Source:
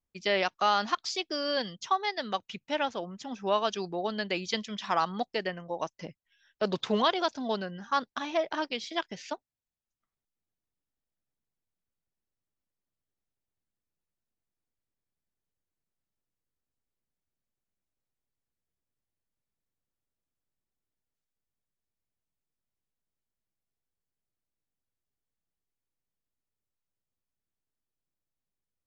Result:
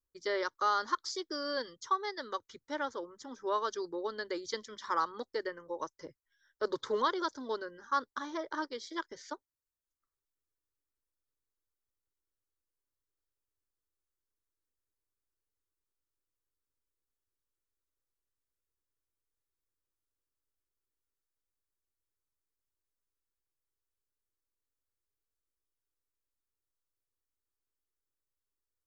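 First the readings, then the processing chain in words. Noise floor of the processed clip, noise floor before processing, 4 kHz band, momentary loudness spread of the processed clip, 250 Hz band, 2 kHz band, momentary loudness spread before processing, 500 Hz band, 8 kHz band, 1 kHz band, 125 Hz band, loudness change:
below −85 dBFS, below −85 dBFS, −9.0 dB, 11 LU, −7.0 dB, −5.5 dB, 10 LU, −5.0 dB, can't be measured, −4.0 dB, below −15 dB, −5.0 dB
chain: phaser with its sweep stopped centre 710 Hz, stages 6
level −1.5 dB

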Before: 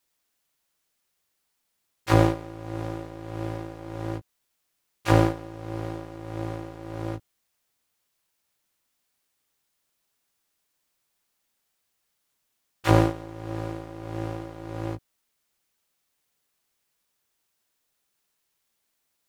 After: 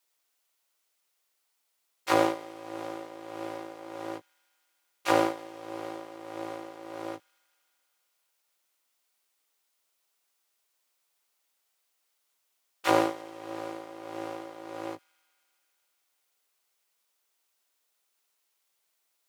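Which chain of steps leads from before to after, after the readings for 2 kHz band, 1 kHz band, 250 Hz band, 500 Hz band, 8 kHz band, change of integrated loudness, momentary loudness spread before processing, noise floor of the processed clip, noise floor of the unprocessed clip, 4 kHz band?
−1.0 dB, −0.5 dB, −6.0 dB, −2.0 dB, 0.0 dB, −4.5 dB, 16 LU, −77 dBFS, −77 dBFS, 0.0 dB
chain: high-pass filter 420 Hz 12 dB per octave
notch filter 1,700 Hz, Q 17
delay with a high-pass on its return 79 ms, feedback 85%, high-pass 1,900 Hz, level −24 dB

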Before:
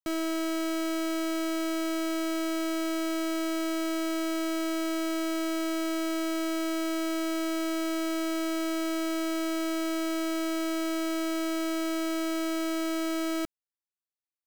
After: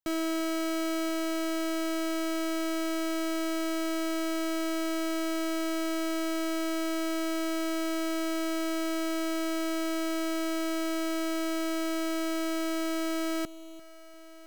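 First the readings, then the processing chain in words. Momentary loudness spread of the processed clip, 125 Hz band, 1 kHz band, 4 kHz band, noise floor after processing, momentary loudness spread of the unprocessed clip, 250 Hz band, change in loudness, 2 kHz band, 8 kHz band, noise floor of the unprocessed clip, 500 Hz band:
0 LU, can't be measured, −0.5 dB, −0.5 dB, −48 dBFS, 0 LU, −1.0 dB, −1.0 dB, 0.0 dB, −0.5 dB, below −85 dBFS, 0.0 dB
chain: echo machine with several playback heads 344 ms, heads first and third, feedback 46%, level −19 dB

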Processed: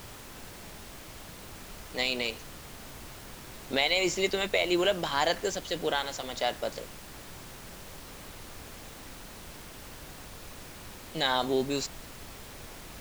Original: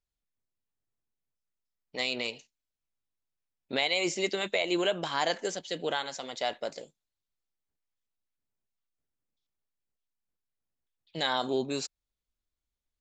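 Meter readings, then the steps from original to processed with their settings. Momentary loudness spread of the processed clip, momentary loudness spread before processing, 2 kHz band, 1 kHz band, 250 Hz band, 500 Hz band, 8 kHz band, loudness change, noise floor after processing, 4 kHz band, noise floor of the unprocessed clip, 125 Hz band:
18 LU, 12 LU, +2.0 dB, +2.0 dB, +2.5 dB, +2.0 dB, +3.5 dB, +2.0 dB, −46 dBFS, +2.0 dB, below −85 dBFS, +5.0 dB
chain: background noise pink −47 dBFS
level +2 dB

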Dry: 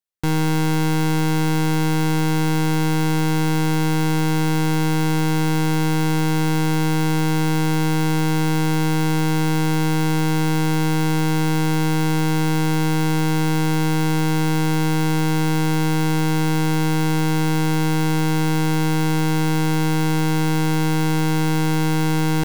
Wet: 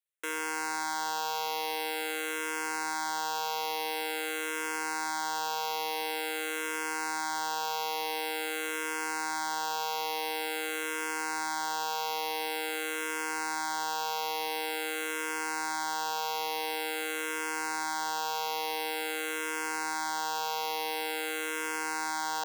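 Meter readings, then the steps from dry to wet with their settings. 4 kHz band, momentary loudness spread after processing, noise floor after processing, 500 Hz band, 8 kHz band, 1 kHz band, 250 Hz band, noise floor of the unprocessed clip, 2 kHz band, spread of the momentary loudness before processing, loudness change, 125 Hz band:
−6.0 dB, 1 LU, −34 dBFS, −11.5 dB, −6.0 dB, −6.0 dB, −25.0 dB, −18 dBFS, −6.0 dB, 0 LU, −12.5 dB, below −40 dB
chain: high-pass filter 510 Hz 24 dB per octave
brickwall limiter −16 dBFS, peak gain reduction 3 dB
frequency shifter mixed with the dry sound −0.47 Hz

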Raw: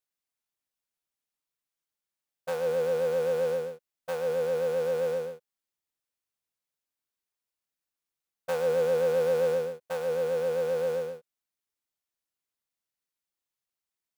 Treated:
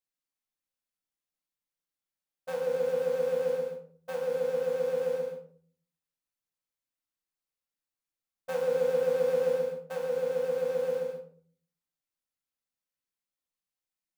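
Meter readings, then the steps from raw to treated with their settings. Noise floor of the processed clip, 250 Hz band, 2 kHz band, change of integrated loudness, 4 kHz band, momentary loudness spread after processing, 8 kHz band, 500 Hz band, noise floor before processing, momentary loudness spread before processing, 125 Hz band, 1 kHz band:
below −85 dBFS, −2.0 dB, −3.5 dB, −1.5 dB, −4.0 dB, 11 LU, can't be measured, −1.5 dB, below −85 dBFS, 13 LU, −5.0 dB, −4.0 dB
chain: rectangular room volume 530 cubic metres, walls furnished, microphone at 2.1 metres
level −6.5 dB

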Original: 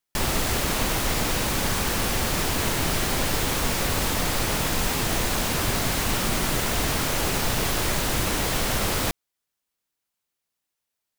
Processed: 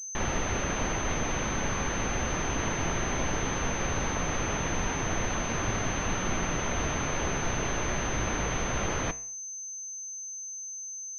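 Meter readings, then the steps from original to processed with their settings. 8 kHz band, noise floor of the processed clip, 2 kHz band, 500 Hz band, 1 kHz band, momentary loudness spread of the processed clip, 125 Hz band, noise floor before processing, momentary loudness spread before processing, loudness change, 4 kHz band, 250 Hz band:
−3.0 dB, −39 dBFS, −4.5 dB, −4.0 dB, −4.0 dB, 6 LU, −4.5 dB, −83 dBFS, 0 LU, −6.5 dB, −11.0 dB, −4.5 dB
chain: flanger 0.18 Hz, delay 8.6 ms, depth 9.2 ms, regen +82%
switching amplifier with a slow clock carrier 6,200 Hz

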